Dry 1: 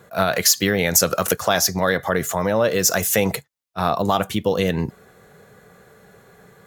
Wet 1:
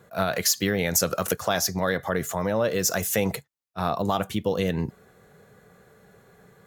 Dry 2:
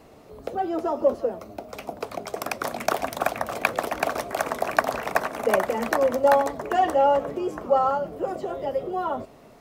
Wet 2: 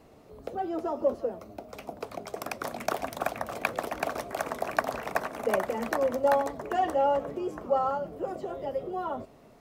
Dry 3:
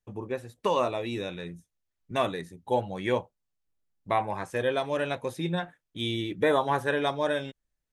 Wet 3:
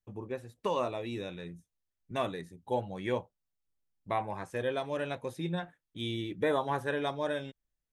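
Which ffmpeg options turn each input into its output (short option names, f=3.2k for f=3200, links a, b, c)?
-af "lowshelf=f=410:g=3,volume=-6.5dB"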